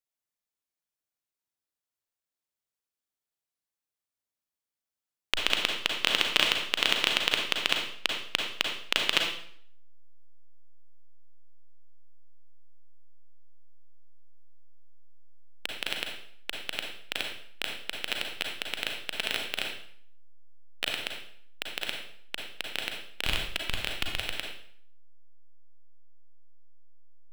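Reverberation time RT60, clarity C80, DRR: 0.60 s, 7.0 dB, 1.0 dB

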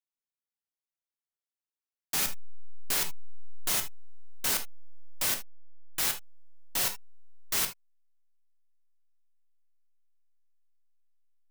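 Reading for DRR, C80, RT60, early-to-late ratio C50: 4.5 dB, 23.5 dB, no single decay rate, 11.5 dB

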